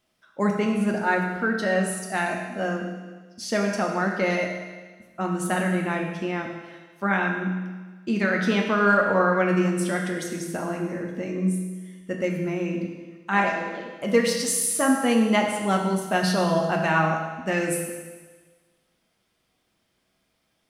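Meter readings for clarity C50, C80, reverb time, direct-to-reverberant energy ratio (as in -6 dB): 3.5 dB, 5.0 dB, 1.4 s, 0.5 dB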